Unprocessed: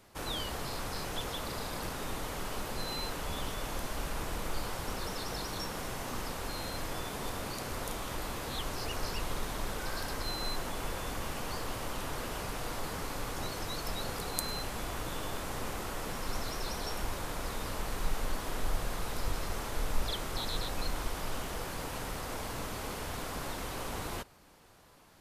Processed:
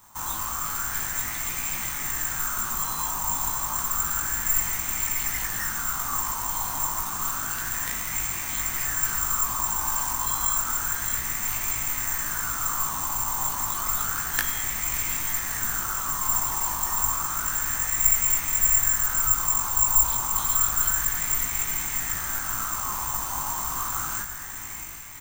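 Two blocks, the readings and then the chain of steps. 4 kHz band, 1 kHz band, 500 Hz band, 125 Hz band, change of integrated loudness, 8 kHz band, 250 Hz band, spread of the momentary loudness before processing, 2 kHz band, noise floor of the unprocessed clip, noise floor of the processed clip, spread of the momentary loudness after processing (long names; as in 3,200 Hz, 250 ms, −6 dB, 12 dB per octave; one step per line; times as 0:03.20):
+1.0 dB, +8.0 dB, −7.0 dB, +1.0 dB, +14.0 dB, +19.5 dB, −1.5 dB, 3 LU, +8.5 dB, −40 dBFS, −32 dBFS, 7 LU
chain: phaser with its sweep stopped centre 1,200 Hz, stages 4
on a send: feedback delay with all-pass diffusion 679 ms, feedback 54%, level −7 dB
on the sum: bad sample-rate conversion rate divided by 6×, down none, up zero stuff
double-tracking delay 19 ms −4.5 dB
auto-filter bell 0.3 Hz 960–2,200 Hz +13 dB
level −1 dB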